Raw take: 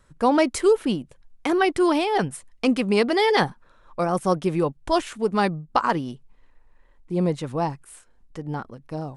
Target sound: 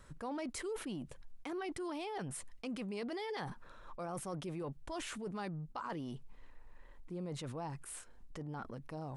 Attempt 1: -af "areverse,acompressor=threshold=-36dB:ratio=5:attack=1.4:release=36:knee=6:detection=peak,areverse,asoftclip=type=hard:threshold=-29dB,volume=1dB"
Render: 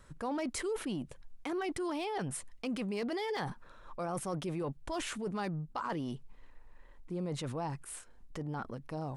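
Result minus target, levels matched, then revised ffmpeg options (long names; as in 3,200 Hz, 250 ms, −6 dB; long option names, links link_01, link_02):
downward compressor: peak gain reduction −5 dB
-af "areverse,acompressor=threshold=-42.5dB:ratio=5:attack=1.4:release=36:knee=6:detection=peak,areverse,asoftclip=type=hard:threshold=-29dB,volume=1dB"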